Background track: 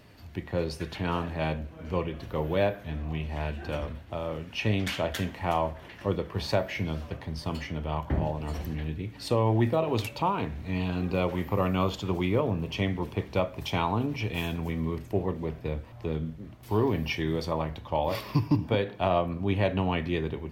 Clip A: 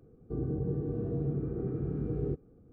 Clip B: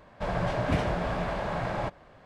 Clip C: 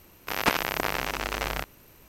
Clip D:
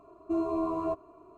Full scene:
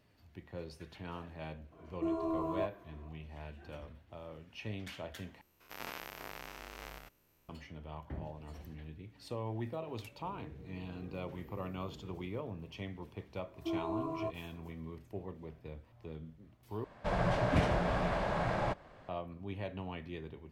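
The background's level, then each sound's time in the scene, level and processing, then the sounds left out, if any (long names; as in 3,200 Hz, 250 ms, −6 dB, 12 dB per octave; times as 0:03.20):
background track −15 dB
0:01.72: mix in D −5 dB
0:05.41: overwrite with C −16 dB + spectrum averaged block by block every 100 ms
0:09.94: mix in A −10 dB + downward compressor 3 to 1, threshold −42 dBFS
0:13.36: mix in D −7.5 dB
0:16.84: overwrite with B −2.5 dB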